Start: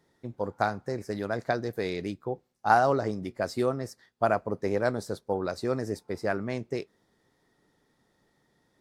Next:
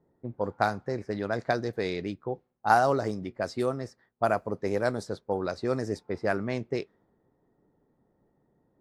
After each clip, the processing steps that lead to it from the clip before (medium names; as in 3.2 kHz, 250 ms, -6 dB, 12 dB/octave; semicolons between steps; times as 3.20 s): level-controlled noise filter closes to 730 Hz, open at -23 dBFS; treble shelf 7.8 kHz +9.5 dB; gain riding within 3 dB 2 s; trim -1 dB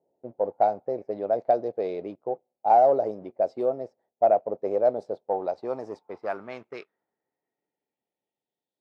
high-order bell 1.4 kHz -10.5 dB 1.1 oct; waveshaping leveller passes 1; band-pass sweep 630 Hz -> 3.8 kHz, 5.08–8.81 s; trim +5 dB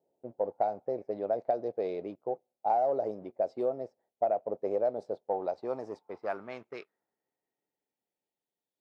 compression 4:1, threshold -21 dBFS, peak gain reduction 7 dB; trim -3.5 dB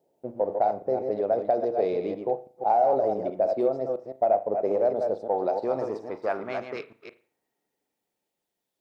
chunks repeated in reverse 165 ms, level -6.5 dB; in parallel at -2.5 dB: peak limiter -26.5 dBFS, peak gain reduction 10.5 dB; on the sum: reverberation, pre-delay 38 ms, DRR 13 dB; trim +2.5 dB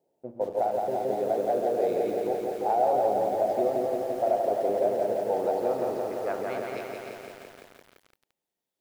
bit-crushed delay 171 ms, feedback 80%, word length 8-bit, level -3 dB; trim -4 dB